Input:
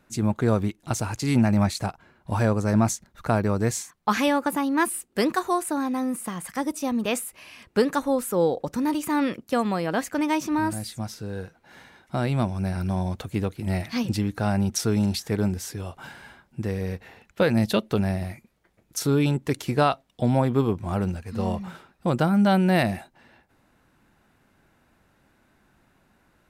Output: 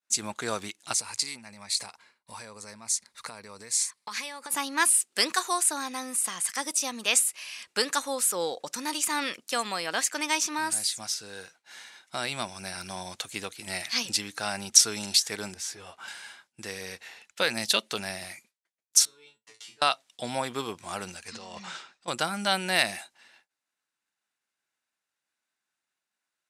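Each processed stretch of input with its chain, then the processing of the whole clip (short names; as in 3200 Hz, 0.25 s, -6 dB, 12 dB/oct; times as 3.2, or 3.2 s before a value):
0.93–4.51 ripple EQ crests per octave 0.93, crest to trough 6 dB + compressor 16:1, threshold -30 dBFS
15.54–16.08 sample leveller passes 1 + high shelf 3200 Hz -11.5 dB + ensemble effect
19.05–19.82 air absorption 58 m + compressor, threshold -34 dBFS + resonator 110 Hz, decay 0.3 s, mix 100%
21.28–22.08 LPF 7400 Hz 24 dB/oct + negative-ratio compressor -31 dBFS
whole clip: weighting filter ITU-R 468; expander -48 dBFS; high shelf 7500 Hz +6.5 dB; gain -3 dB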